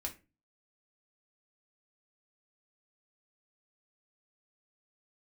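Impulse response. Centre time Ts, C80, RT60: 11 ms, 21.0 dB, 0.30 s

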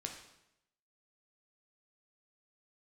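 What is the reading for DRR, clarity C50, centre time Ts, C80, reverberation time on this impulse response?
2.0 dB, 6.5 dB, 27 ms, 9.0 dB, 0.85 s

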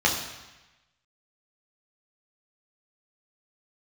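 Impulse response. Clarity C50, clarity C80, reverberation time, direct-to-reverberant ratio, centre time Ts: 6.0 dB, 8.0 dB, 1.1 s, -2.0 dB, 35 ms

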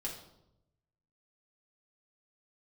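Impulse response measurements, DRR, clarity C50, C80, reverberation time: -3.5 dB, 6.5 dB, 9.5 dB, 0.85 s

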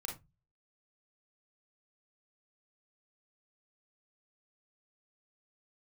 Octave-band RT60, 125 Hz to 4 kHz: 0.50 s, 0.40 s, 0.20 s, 0.20 s, 0.15 s, 0.15 s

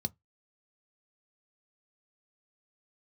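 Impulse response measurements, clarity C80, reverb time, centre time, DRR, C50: 43.5 dB, 0.15 s, 2 ms, 11.5 dB, 33.5 dB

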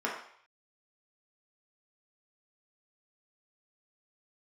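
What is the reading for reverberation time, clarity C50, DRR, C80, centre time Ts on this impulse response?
0.60 s, 4.0 dB, -4.0 dB, 7.5 dB, 36 ms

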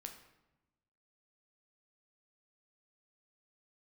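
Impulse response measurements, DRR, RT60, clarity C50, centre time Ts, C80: 4.0 dB, 1.0 s, 8.5 dB, 19 ms, 11.0 dB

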